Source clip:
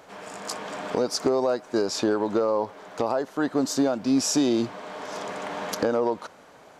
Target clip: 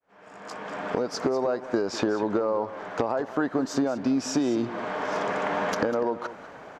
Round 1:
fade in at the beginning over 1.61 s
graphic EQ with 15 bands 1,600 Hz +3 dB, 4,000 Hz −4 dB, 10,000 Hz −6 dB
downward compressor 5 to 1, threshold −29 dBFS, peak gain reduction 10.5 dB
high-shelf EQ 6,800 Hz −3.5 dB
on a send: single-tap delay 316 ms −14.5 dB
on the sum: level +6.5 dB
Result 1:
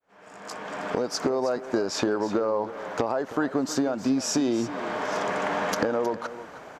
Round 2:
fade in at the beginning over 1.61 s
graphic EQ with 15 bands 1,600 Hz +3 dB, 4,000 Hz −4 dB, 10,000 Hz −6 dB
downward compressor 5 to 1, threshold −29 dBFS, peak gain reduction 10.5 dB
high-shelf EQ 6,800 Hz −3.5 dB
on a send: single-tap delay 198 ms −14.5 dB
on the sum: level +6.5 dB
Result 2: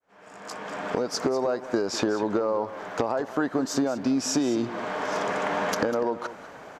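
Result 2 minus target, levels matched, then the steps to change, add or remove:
8,000 Hz band +5.0 dB
change: high-shelf EQ 6,800 Hz −15 dB

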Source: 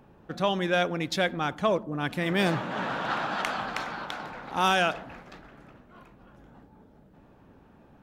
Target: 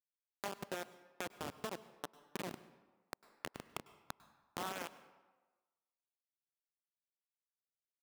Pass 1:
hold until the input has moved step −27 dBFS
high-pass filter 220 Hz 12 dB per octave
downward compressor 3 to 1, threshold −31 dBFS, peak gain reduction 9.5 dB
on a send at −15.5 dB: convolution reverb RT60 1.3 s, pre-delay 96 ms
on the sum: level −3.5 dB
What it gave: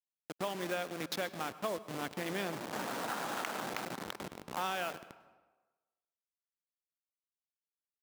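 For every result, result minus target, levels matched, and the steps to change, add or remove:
hold until the input has moved: distortion −17 dB; downward compressor: peak gain reduction −5.5 dB
change: hold until the input has moved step −16 dBFS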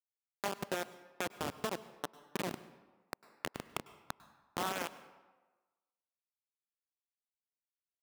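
downward compressor: peak gain reduction −5.5 dB
change: downward compressor 3 to 1, threshold −39.5 dBFS, peak gain reduction 15 dB

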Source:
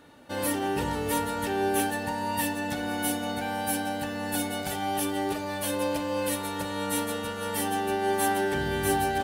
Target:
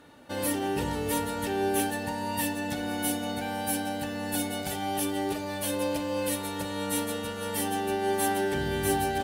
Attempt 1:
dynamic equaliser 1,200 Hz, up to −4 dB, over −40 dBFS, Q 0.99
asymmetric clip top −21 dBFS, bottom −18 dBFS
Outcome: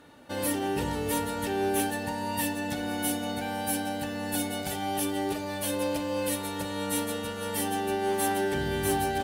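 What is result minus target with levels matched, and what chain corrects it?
asymmetric clip: distortion +5 dB
dynamic equaliser 1,200 Hz, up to −4 dB, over −40 dBFS, Q 0.99
asymmetric clip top −14 dBFS, bottom −18 dBFS

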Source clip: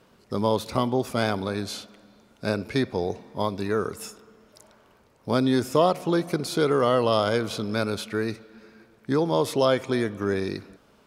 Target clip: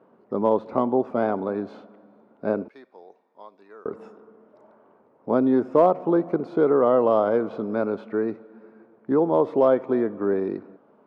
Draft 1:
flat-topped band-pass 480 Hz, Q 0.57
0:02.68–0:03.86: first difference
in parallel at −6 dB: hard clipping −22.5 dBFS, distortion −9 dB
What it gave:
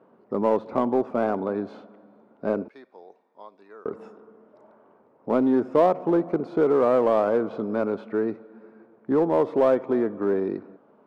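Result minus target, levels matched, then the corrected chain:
hard clipping: distortion +19 dB
flat-topped band-pass 480 Hz, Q 0.57
0:02.68–0:03.86: first difference
in parallel at −6 dB: hard clipping −13 dBFS, distortion −28 dB

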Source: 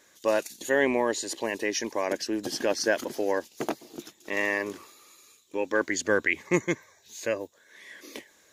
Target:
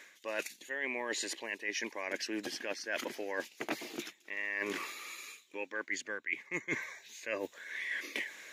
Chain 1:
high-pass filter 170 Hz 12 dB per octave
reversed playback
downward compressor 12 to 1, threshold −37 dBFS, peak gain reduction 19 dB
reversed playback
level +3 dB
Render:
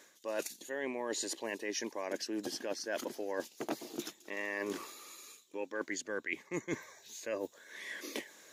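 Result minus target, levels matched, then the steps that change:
2,000 Hz band −4.5 dB
add after high-pass filter: parametric band 2,200 Hz +14.5 dB 1.2 octaves

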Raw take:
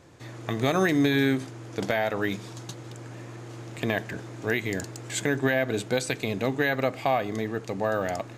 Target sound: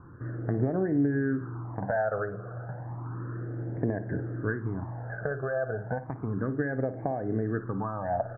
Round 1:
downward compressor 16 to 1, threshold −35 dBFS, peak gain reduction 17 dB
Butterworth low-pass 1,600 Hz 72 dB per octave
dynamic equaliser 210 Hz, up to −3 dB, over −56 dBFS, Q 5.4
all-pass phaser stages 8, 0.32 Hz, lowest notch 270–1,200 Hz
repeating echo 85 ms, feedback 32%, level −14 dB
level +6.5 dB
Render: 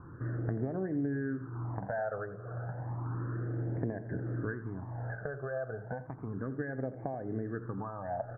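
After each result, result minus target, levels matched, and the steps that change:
echo 29 ms late; downward compressor: peak gain reduction +7 dB
change: repeating echo 56 ms, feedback 32%, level −14 dB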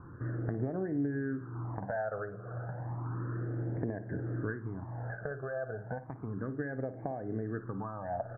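downward compressor: peak gain reduction +7 dB
change: downward compressor 16 to 1, threshold −27.5 dBFS, peak gain reduction 10 dB

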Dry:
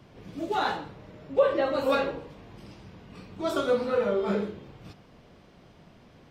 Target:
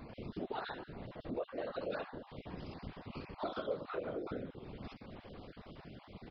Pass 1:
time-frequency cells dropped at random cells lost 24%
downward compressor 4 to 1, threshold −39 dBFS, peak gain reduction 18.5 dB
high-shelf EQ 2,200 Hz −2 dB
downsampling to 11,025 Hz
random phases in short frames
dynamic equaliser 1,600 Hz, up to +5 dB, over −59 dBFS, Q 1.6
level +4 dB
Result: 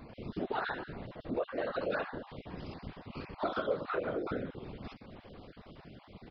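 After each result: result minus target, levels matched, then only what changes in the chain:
downward compressor: peak gain reduction −5 dB; 2,000 Hz band +2.5 dB
change: downward compressor 4 to 1, threshold −45.5 dBFS, peak gain reduction 23.5 dB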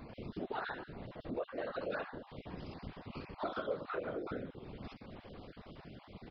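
2,000 Hz band +3.0 dB
change: dynamic equaliser 4,100 Hz, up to +5 dB, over −59 dBFS, Q 1.6

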